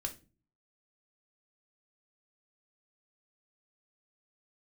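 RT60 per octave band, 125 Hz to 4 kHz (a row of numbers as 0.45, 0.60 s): 0.70, 0.60, 0.40, 0.25, 0.25, 0.25 s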